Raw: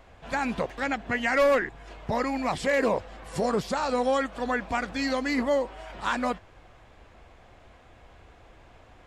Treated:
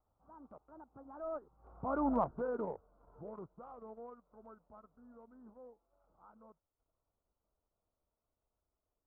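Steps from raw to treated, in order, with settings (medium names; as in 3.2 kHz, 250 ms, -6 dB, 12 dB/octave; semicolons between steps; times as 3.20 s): Doppler pass-by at 2.10 s, 43 m/s, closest 4.9 m; steep low-pass 1.4 kHz 96 dB/octave; transient shaper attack -3 dB, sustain -8 dB; trim -1 dB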